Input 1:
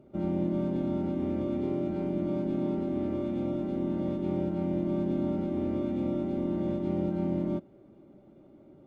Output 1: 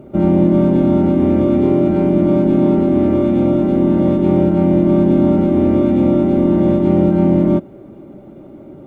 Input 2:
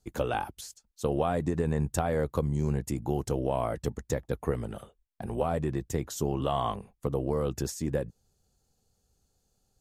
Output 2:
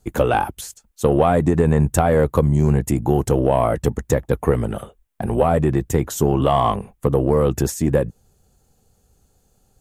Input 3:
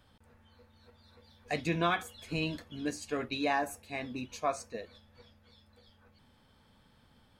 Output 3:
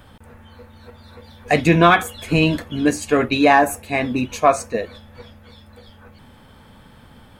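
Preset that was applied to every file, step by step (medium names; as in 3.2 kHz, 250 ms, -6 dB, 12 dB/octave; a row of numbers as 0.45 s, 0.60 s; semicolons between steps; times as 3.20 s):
peaking EQ 4.8 kHz -7.5 dB 1 oct; in parallel at -5 dB: saturation -23.5 dBFS; on the sum: peak normalisation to -1.5 dBFS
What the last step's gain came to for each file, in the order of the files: +14.0 dB, +9.5 dB, +14.0 dB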